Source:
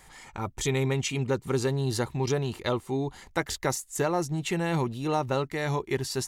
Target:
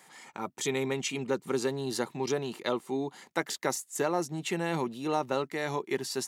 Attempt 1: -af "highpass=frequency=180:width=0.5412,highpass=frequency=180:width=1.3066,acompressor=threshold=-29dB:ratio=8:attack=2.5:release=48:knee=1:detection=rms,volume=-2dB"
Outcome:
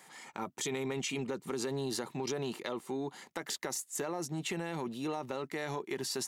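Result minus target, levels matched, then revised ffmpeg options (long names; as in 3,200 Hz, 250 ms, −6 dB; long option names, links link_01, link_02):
downward compressor: peak gain reduction +12 dB
-af "highpass=frequency=180:width=0.5412,highpass=frequency=180:width=1.3066,volume=-2dB"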